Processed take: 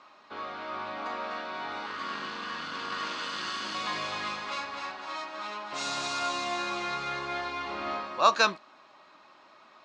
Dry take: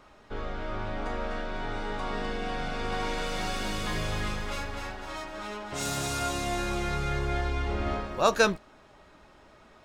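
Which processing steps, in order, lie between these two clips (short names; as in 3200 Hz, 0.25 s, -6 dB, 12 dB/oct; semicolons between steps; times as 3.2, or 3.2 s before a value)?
1.86–3.75 minimum comb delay 0.64 ms; speaker cabinet 310–6700 Hz, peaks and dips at 440 Hz -8 dB, 1100 Hz +9 dB, 2500 Hz +4 dB, 4200 Hz +7 dB; gain -1.5 dB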